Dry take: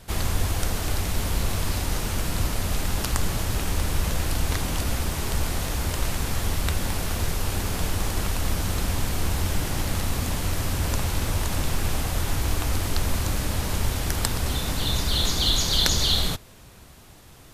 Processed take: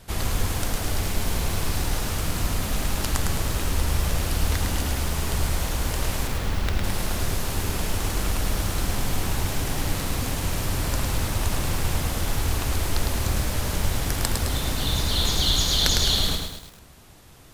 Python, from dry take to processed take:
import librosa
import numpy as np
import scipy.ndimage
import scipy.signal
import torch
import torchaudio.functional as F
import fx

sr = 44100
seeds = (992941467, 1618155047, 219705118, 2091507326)

y = fx.median_filter(x, sr, points=5, at=(6.27, 6.84))
y = fx.echo_crushed(y, sr, ms=106, feedback_pct=55, bits=7, wet_db=-4.0)
y = y * librosa.db_to_amplitude(-1.0)